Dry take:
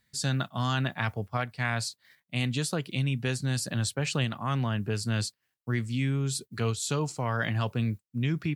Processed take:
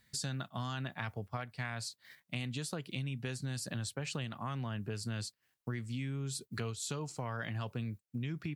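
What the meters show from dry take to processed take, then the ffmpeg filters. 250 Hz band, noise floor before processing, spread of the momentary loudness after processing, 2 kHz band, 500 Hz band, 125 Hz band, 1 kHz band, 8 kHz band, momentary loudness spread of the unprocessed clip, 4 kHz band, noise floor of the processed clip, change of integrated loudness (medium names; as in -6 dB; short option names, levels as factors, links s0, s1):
-9.5 dB, -81 dBFS, 4 LU, -10.0 dB, -9.5 dB, -10.0 dB, -9.5 dB, -7.5 dB, 4 LU, -8.5 dB, -82 dBFS, -9.5 dB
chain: -af "acompressor=threshold=0.00891:ratio=4,volume=1.41"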